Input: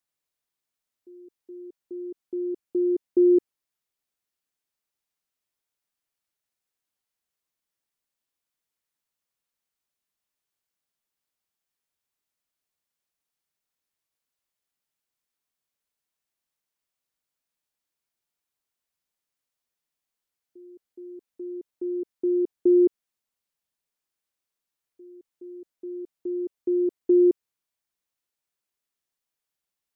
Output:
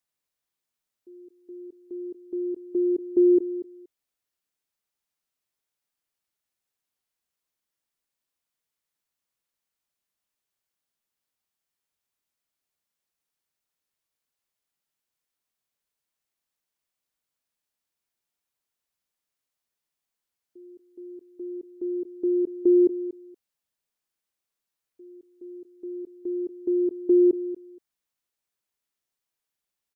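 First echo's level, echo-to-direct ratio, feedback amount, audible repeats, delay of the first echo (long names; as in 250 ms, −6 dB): −14.0 dB, −14.0 dB, 16%, 2, 236 ms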